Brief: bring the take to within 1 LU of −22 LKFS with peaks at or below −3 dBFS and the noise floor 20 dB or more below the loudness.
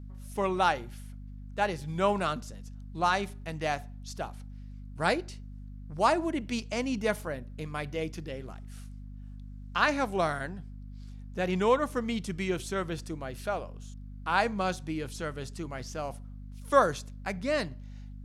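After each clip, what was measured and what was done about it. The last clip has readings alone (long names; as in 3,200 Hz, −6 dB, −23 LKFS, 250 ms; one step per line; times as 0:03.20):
mains hum 50 Hz; hum harmonics up to 250 Hz; level of the hum −41 dBFS; integrated loudness −31.0 LKFS; sample peak −8.0 dBFS; target loudness −22.0 LKFS
→ mains-hum notches 50/100/150/200/250 Hz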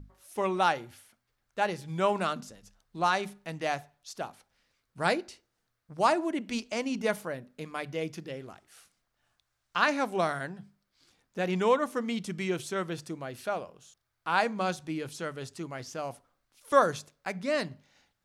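mains hum none found; integrated loudness −31.0 LKFS; sample peak −7.5 dBFS; target loudness −22.0 LKFS
→ level +9 dB
brickwall limiter −3 dBFS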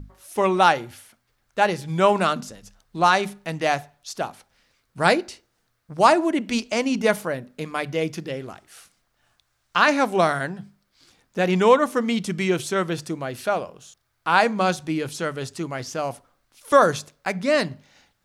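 integrated loudness −22.5 LKFS; sample peak −3.0 dBFS; background noise floor −71 dBFS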